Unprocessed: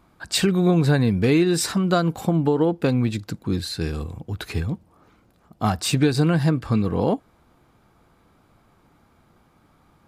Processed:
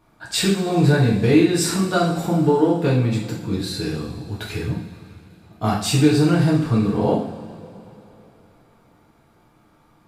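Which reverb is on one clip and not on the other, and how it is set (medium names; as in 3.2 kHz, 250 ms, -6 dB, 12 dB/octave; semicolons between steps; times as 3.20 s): two-slope reverb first 0.55 s, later 3.4 s, from -18 dB, DRR -5 dB; trim -4 dB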